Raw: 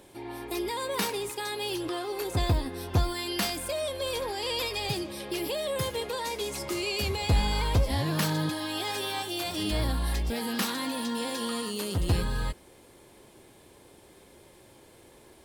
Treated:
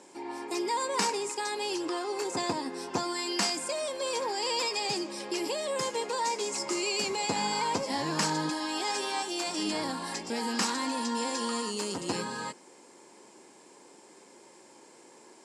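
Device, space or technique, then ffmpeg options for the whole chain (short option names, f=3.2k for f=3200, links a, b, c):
television speaker: -af "highpass=f=200:w=0.5412,highpass=f=200:w=1.3066,equalizer=f=630:t=q:w=4:g=-3,equalizer=f=930:t=q:w=4:g=6,equalizer=f=3.5k:t=q:w=4:g=-7,equalizer=f=5.2k:t=q:w=4:g=6,equalizer=f=7.3k:t=q:w=4:g=10,lowpass=f=8.9k:w=0.5412,lowpass=f=8.9k:w=1.3066"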